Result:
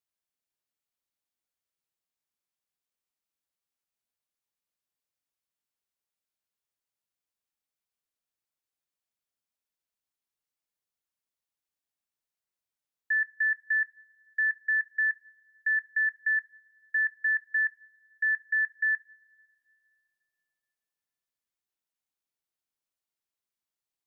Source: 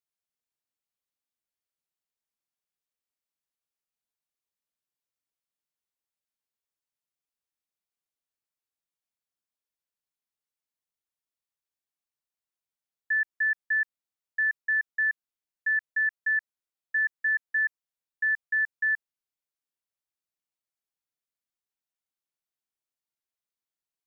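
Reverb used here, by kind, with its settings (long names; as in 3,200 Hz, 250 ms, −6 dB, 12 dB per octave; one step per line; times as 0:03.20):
coupled-rooms reverb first 0.36 s, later 2.7 s, from −17 dB, DRR 19 dB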